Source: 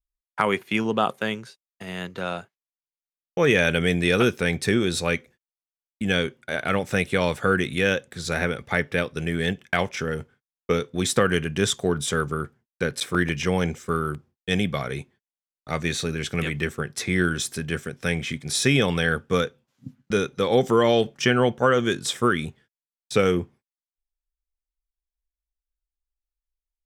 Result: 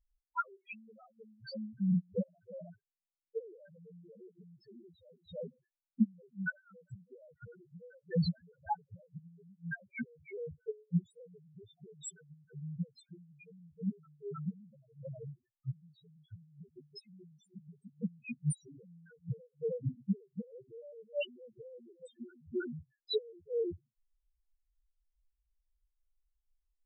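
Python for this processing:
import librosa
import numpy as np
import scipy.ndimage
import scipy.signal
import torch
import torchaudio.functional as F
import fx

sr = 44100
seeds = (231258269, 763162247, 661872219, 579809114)

y = x + 10.0 ** (-19.5 / 20.0) * np.pad(x, (int(315 * sr / 1000.0), 0))[:len(x)]
y = fx.gate_flip(y, sr, shuts_db=-18.0, range_db=-39)
y = fx.spec_topn(y, sr, count=1)
y = y * 10.0 ** (14.5 / 20.0)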